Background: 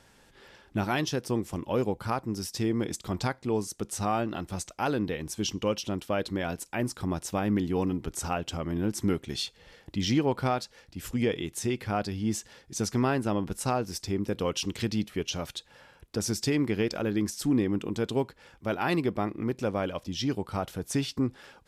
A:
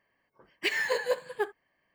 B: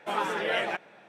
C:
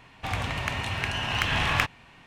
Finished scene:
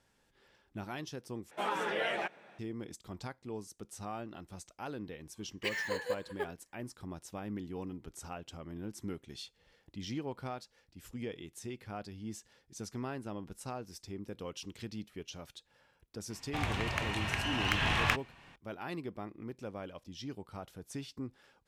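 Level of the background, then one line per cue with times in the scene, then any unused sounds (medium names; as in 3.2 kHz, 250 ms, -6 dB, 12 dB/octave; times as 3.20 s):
background -13.5 dB
1.51 s: replace with B -4 dB + peak limiter -19.5 dBFS
5.00 s: add A -7.5 dB
16.30 s: add C -5 dB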